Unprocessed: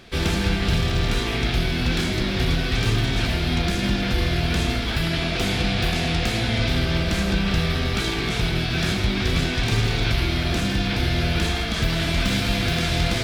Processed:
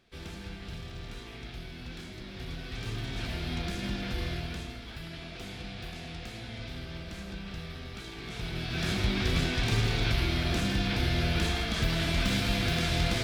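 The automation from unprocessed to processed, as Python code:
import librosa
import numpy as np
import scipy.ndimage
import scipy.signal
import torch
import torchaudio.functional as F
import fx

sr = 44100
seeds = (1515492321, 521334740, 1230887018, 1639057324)

y = fx.gain(x, sr, db=fx.line((2.21, -20.0), (3.39, -11.5), (4.31, -11.5), (4.72, -18.5), (8.09, -18.5), (9.0, -6.0)))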